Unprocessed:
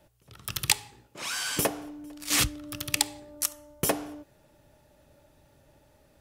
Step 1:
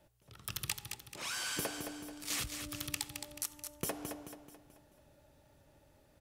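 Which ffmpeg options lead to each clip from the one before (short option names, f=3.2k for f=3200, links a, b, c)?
-filter_complex "[0:a]acompressor=threshold=-29dB:ratio=5,asplit=2[a][b];[b]aecho=0:1:217|434|651|868|1085:0.447|0.197|0.0865|0.0381|0.0167[c];[a][c]amix=inputs=2:normalize=0,volume=-5.5dB"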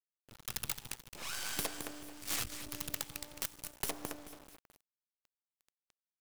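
-af "aeval=exprs='(mod(20*val(0)+1,2)-1)/20':c=same,acrusher=bits=6:dc=4:mix=0:aa=0.000001,volume=1.5dB"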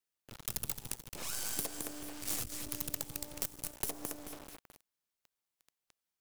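-filter_complex "[0:a]acrossover=split=760|5800[a][b][c];[a]acompressor=threshold=-47dB:ratio=4[d];[b]acompressor=threshold=-55dB:ratio=4[e];[c]acompressor=threshold=-39dB:ratio=4[f];[d][e][f]amix=inputs=3:normalize=0,volume=6dB"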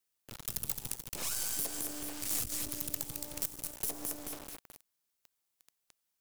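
-af "highshelf=f=5.2k:g=6,alimiter=limit=-20dB:level=0:latency=1:release=17,volume=2dB"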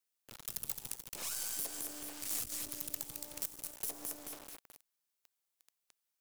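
-af "lowshelf=f=260:g=-7.5,volume=-3.5dB"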